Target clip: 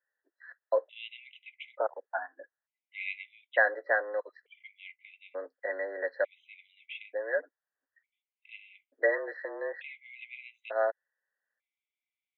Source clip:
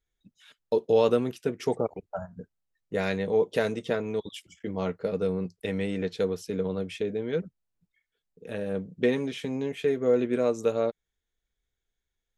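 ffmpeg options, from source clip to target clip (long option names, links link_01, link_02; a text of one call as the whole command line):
ffmpeg -i in.wav -af "equalizer=frequency=1600:width_type=o:width=0.54:gain=14,highpass=frequency=390:width_type=q:width=0.5412,highpass=frequency=390:width_type=q:width=1.307,lowpass=frequency=3000:width_type=q:width=0.5176,lowpass=frequency=3000:width_type=q:width=0.7071,lowpass=frequency=3000:width_type=q:width=1.932,afreqshift=91,afftfilt=real='re*gt(sin(2*PI*0.56*pts/sr)*(1-2*mod(floor(b*sr/1024/2000),2)),0)':imag='im*gt(sin(2*PI*0.56*pts/sr)*(1-2*mod(floor(b*sr/1024/2000),2)),0)':win_size=1024:overlap=0.75,volume=-1dB" out.wav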